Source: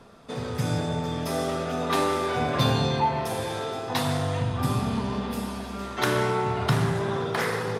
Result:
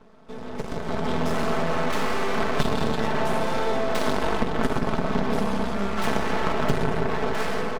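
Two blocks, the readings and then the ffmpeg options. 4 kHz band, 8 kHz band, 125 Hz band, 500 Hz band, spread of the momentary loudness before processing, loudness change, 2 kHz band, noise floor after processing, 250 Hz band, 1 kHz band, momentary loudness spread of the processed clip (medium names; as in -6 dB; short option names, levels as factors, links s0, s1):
-2.0 dB, -2.5 dB, -4.5 dB, +1.5 dB, 8 LU, +0.5 dB, +2.0 dB, -34 dBFS, +1.5 dB, +0.5 dB, 4 LU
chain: -filter_complex "[0:a]lowpass=8500,acrossover=split=270[s0][s1];[s1]asoftclip=type=tanh:threshold=0.0501[s2];[s0][s2]amix=inputs=2:normalize=0,aeval=exprs='0.224*(cos(1*acos(clip(val(0)/0.224,-1,1)))-cos(1*PI/2))+0.0708*(cos(7*acos(clip(val(0)/0.224,-1,1)))-cos(7*PI/2))':c=same,asplit=2[s3][s4];[s4]adelay=169,lowpass=f=2000:p=1,volume=0.562,asplit=2[s5][s6];[s6]adelay=169,lowpass=f=2000:p=1,volume=0.33,asplit=2[s7][s8];[s8]adelay=169,lowpass=f=2000:p=1,volume=0.33,asplit=2[s9][s10];[s10]adelay=169,lowpass=f=2000:p=1,volume=0.33[s11];[s5][s7][s9][s11]amix=inputs=4:normalize=0[s12];[s3][s12]amix=inputs=2:normalize=0,acompressor=threshold=0.0447:ratio=12,highpass=94,aeval=exprs='max(val(0),0)':c=same,highshelf=f=2100:g=-9.5,aecho=1:1:4.6:0.53,dynaudnorm=f=100:g=17:m=4.47"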